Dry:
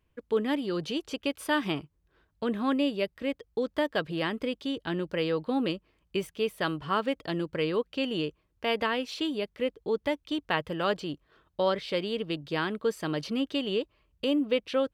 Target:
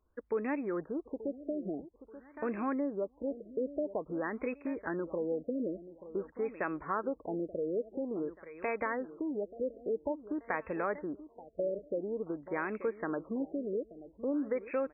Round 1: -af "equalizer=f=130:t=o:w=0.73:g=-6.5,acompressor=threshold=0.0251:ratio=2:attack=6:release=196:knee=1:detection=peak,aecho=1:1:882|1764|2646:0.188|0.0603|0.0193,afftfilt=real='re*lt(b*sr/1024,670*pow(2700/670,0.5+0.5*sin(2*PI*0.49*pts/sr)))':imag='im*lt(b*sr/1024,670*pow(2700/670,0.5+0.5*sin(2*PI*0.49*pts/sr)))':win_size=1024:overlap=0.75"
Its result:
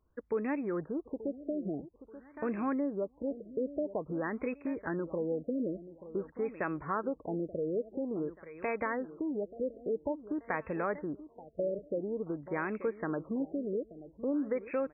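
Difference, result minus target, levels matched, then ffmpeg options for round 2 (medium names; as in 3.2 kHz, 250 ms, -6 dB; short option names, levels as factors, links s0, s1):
125 Hz band +4.5 dB
-af "equalizer=f=130:t=o:w=0.73:g=-18.5,acompressor=threshold=0.0251:ratio=2:attack=6:release=196:knee=1:detection=peak,aecho=1:1:882|1764|2646:0.188|0.0603|0.0193,afftfilt=real='re*lt(b*sr/1024,670*pow(2700/670,0.5+0.5*sin(2*PI*0.49*pts/sr)))':imag='im*lt(b*sr/1024,670*pow(2700/670,0.5+0.5*sin(2*PI*0.49*pts/sr)))':win_size=1024:overlap=0.75"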